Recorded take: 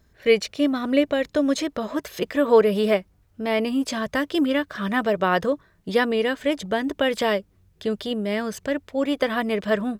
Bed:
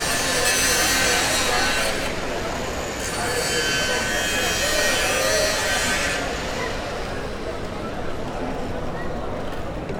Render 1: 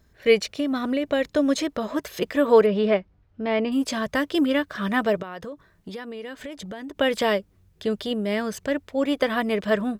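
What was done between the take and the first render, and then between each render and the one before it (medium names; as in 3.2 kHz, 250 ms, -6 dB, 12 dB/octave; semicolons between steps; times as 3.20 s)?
0.54–1.09 s: compression, threshold -20 dBFS; 2.66–3.72 s: distance through air 190 m; 5.22–6.97 s: compression, threshold -33 dBFS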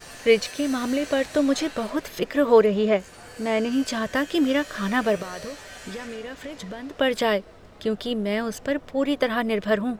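add bed -20 dB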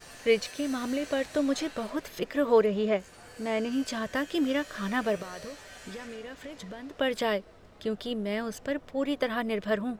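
trim -6 dB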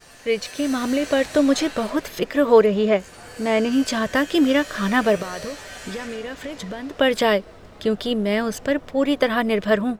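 level rider gain up to 10 dB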